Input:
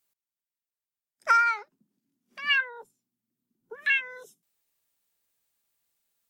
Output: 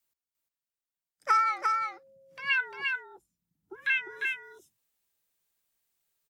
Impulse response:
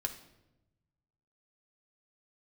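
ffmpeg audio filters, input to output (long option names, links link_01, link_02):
-filter_complex "[0:a]asplit=2[link_01][link_02];[link_02]aecho=0:1:350:0.631[link_03];[link_01][link_03]amix=inputs=2:normalize=0,afreqshift=-66,asettb=1/sr,asplit=3[link_04][link_05][link_06];[link_04]atrim=end=1.284[link_07];[link_05]atrim=start=1.28:end=2.52,asetpts=PTS-STARTPTS,afade=type=in:duration=0.004:curve=qsin,afade=type=out:start_time=1.236:duration=0.004:curve=qsin,aeval=exprs='val(0)+0.00224*sin(2*PI*540*n/s)':channel_layout=same[link_08];[link_06]atrim=start=2.516[link_09];[link_07][link_08]acrossfade=duration=0.004:curve1=hsin:curve2=qsin[link_10];[link_10][link_09]acrossfade=duration=0.004:curve1=qsin:curve2=hsin,volume=-3dB"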